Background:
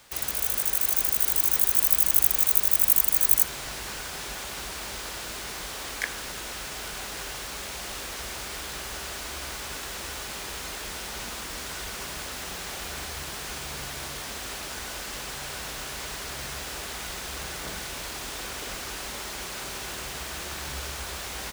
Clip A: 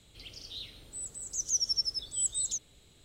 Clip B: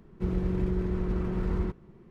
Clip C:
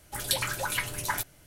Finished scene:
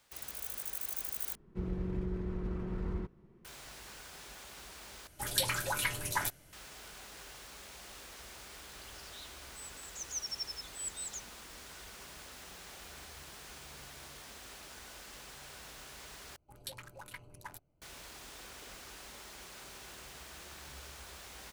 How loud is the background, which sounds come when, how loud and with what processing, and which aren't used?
background -14.5 dB
1.35 replace with B -8 dB
5.07 replace with C -3 dB
8.62 add A -10 dB
16.36 replace with C -16 dB + Wiener smoothing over 25 samples

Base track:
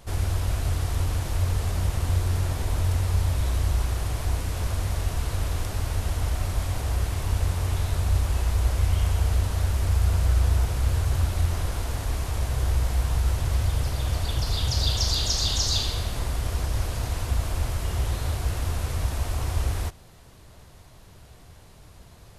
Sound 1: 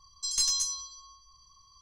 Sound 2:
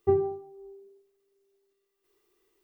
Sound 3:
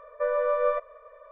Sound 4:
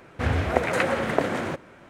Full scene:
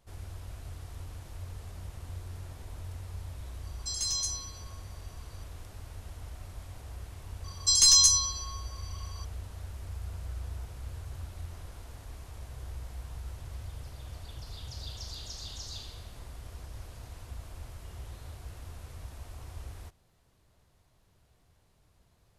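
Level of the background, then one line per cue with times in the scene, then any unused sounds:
base track -17.5 dB
3.63 add 1 -2.5 dB + limiter -19 dBFS
7.44 add 1 -8 dB + maximiser +17.5 dB
not used: 2, 3, 4

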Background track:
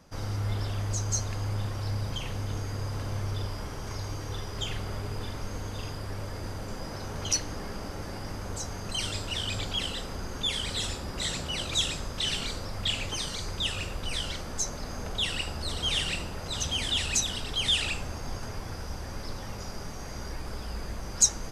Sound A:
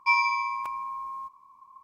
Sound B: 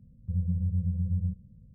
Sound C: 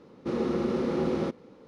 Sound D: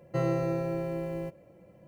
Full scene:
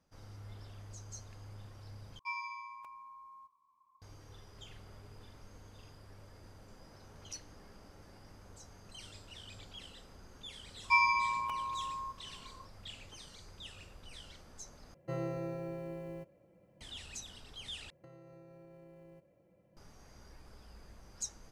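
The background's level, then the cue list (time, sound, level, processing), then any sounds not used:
background track -19 dB
2.19 replace with A -17.5 dB
10.84 add A -4 dB
14.94 replace with D -9.5 dB
17.9 replace with D -12.5 dB + compressor 20:1, threshold -39 dBFS
not used: B, C

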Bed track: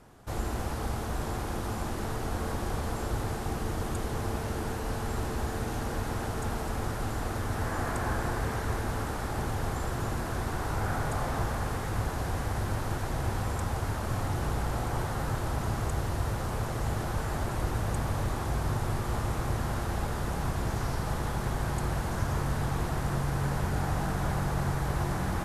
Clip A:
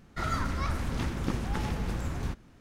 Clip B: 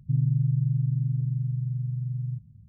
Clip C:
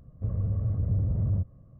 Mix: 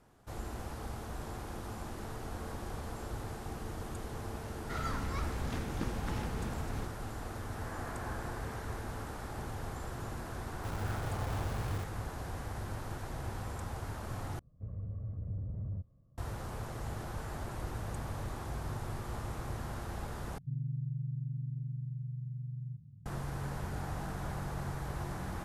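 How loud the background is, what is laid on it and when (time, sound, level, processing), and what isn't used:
bed track -9 dB
4.53 add A -6.5 dB
10.41 add C -11.5 dB + bit-crush 5-bit
14.39 replace with C -12.5 dB
20.38 replace with B -14 dB + per-bin compression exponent 0.6

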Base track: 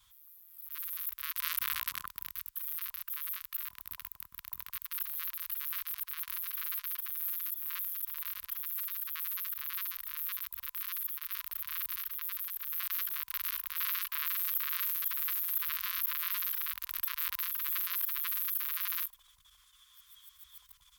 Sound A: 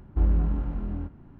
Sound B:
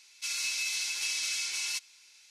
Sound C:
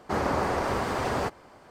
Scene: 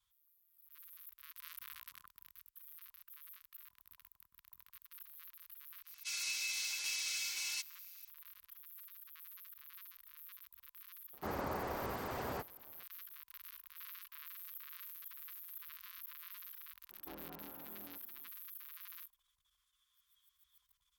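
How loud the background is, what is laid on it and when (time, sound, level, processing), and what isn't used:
base track -17 dB
5.83 add B -6.5 dB, fades 0.10 s
11.13 add C -13 dB
16.9 add A -9.5 dB + HPF 460 Hz

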